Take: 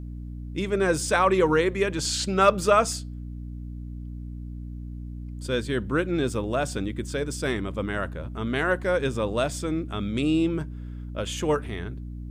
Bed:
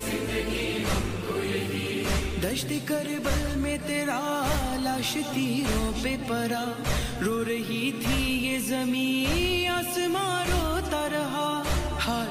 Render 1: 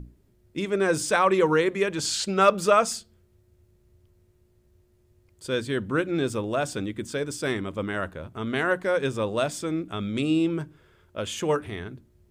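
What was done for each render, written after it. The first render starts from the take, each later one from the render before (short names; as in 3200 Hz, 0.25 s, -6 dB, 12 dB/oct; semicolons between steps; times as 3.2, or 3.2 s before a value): notches 60/120/180/240/300 Hz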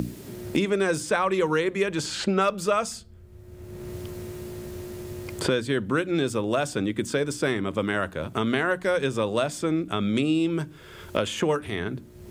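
three-band squash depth 100%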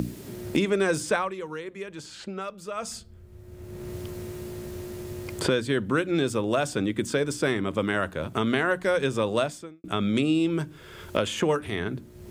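1.12–2.96 dip -12 dB, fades 0.22 s; 9.42–9.84 fade out quadratic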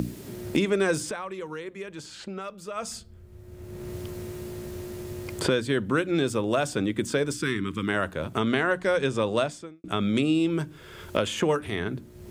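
1.05–2.76 compressor 4:1, threshold -30 dBFS; 7.33–7.88 Butterworth band-stop 650 Hz, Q 0.81; 8.4–9.89 LPF 9500 Hz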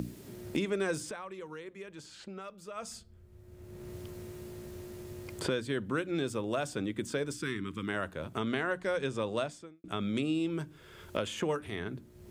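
gain -8 dB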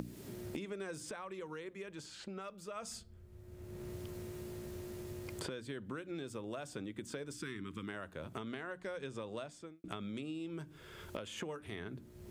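compressor 6:1, threshold -40 dBFS, peak gain reduction 12.5 dB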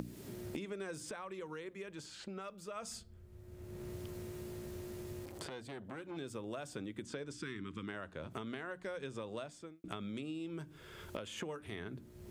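5.25–6.17 core saturation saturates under 1400 Hz; 7.03–8.31 LPF 7500 Hz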